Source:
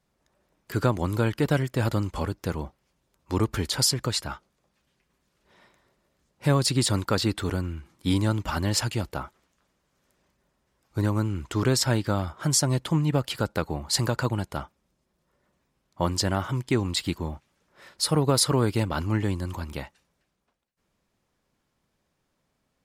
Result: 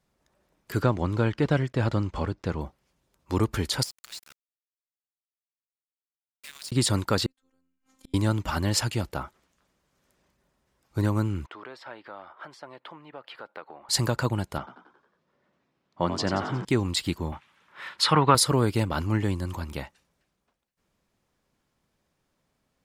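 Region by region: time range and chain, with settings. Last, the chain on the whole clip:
0.82–2.61 block floating point 7-bit + air absorption 100 m
3.83–6.72 inverse Chebyshev high-pass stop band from 440 Hz, stop band 70 dB + compressor 4:1, threshold -38 dBFS + sample gate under -41.5 dBFS
7.26–8.14 bell 6700 Hz +9 dB 0.27 oct + robotiser 263 Hz + flipped gate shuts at -29 dBFS, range -40 dB
11.46–13.89 compressor 2.5:1, threshold -31 dBFS + HPF 630 Hz + air absorption 410 m
14.58–16.65 BPF 130–4300 Hz + frequency-shifting echo 90 ms, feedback 54%, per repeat +56 Hz, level -9.5 dB
17.32–18.35 treble ducked by the level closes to 2700 Hz, closed at -17.5 dBFS + HPF 87 Hz + band shelf 1800 Hz +12 dB 2.4 oct
whole clip: dry

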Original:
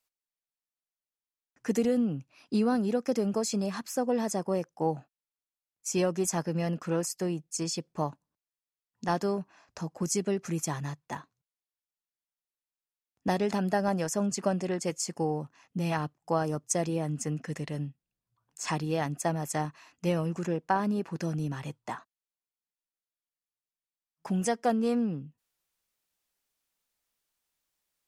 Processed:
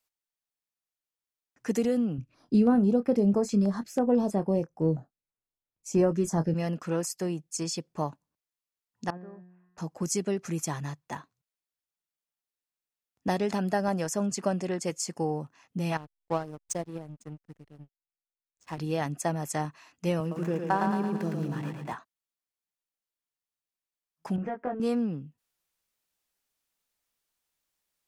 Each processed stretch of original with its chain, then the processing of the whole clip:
2.18–6.54 tilt -2.5 dB/oct + doubler 25 ms -12 dB + stepped notch 6.1 Hz 780–6400 Hz
9.1–9.78 LPF 2000 Hz 24 dB/oct + resonator 180 Hz, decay 0.95 s, mix 90%
15.97–18.78 backlash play -31 dBFS + upward expander 2.5:1, over -47 dBFS
20.2–21.93 median filter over 9 samples + HPF 130 Hz + split-band echo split 330 Hz, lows 0.164 s, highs 0.111 s, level -4 dB
24.36–24.8 LPF 2000 Hz 24 dB/oct + compressor, threshold -29 dBFS + doubler 20 ms -2 dB
whole clip: dry

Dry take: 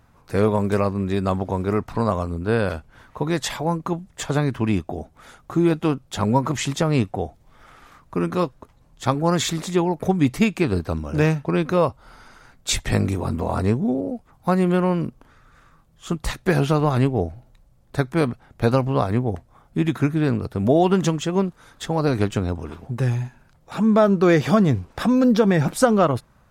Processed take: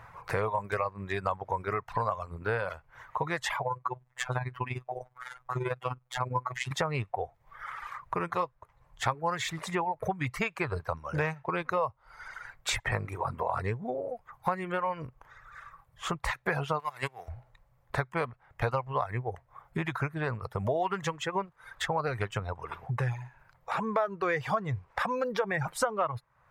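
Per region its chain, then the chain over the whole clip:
3.62–6.71 tremolo 20 Hz, depth 63% + robotiser 126 Hz
16.79–17.27 spectral whitening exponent 0.6 + HPF 150 Hz + gate -18 dBFS, range -15 dB
whole clip: reverb removal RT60 1.5 s; graphic EQ 125/250/500/1000/2000 Hz +9/-12/+7/+12/+12 dB; compressor 3:1, threshold -31 dBFS; gain -1.5 dB

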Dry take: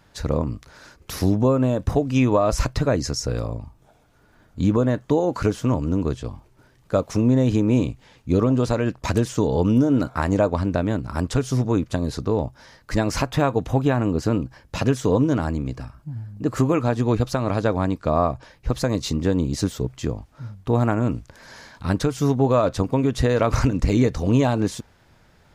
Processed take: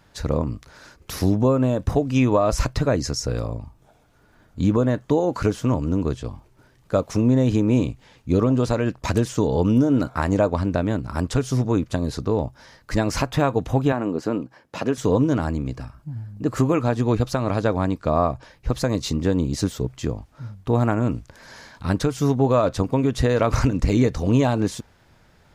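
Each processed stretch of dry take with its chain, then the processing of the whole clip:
13.92–14.98 HPF 230 Hz + high shelf 2700 Hz -7.5 dB
whole clip: dry

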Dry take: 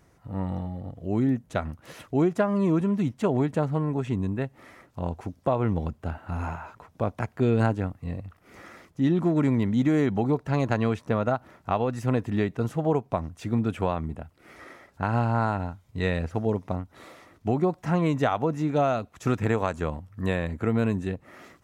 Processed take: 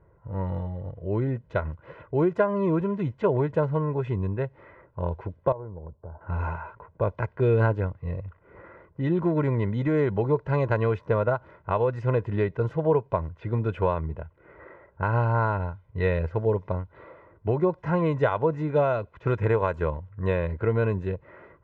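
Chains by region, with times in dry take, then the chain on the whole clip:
5.52–6.21 ladder low-pass 1100 Hz, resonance 30% + compressor 3:1, threshold -37 dBFS
whole clip: low-pass opened by the level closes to 1200 Hz, open at -23.5 dBFS; LPF 2200 Hz 12 dB/oct; comb 2 ms, depth 70%

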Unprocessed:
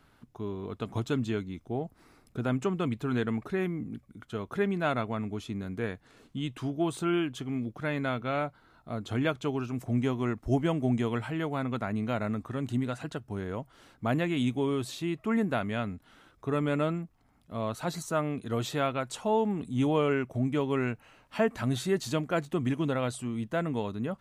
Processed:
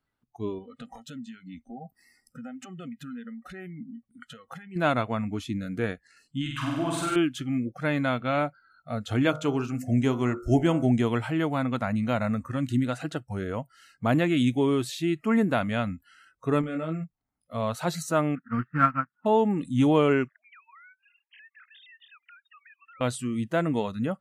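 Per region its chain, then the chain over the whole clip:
0.58–4.76 small resonant body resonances 230/780/1900/3000 Hz, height 10 dB, ringing for 75 ms + compressor 12:1, threshold -38 dBFS
6.41–7.16 bell 1400 Hz +9.5 dB 1.7 oct + compressor, threshold -32 dBFS + flutter echo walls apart 8.3 m, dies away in 1.2 s
9.23–10.86 bell 7100 Hz +4.5 dB 0.33 oct + de-hum 51.2 Hz, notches 29
16.61–17.04 high shelf 3500 Hz -6 dB + compressor 16:1, threshold -31 dBFS + doubler 25 ms -4 dB
18.35–19.26 block floating point 3-bit + EQ curve 100 Hz 0 dB, 160 Hz +10 dB, 240 Hz +8 dB, 550 Hz -12 dB, 920 Hz +1 dB, 1400 Hz +11 dB, 3600 Hz -18 dB, 6300 Hz -26 dB + upward expander 2.5:1, over -37 dBFS
20.28–23.01 sine-wave speech + HPF 1200 Hz 24 dB/oct + compressor 10:1, threshold -54 dBFS
whole clip: spectral noise reduction 25 dB; dynamic EQ 310 Hz, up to +3 dB, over -46 dBFS, Q 4.4; gain +4.5 dB

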